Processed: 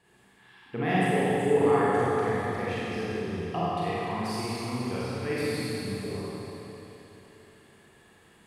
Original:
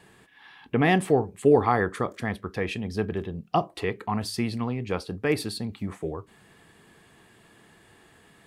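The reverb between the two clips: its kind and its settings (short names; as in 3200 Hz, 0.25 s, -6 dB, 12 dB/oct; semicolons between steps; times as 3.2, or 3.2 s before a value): Schroeder reverb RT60 3.5 s, combs from 32 ms, DRR -9.5 dB; gain -11.5 dB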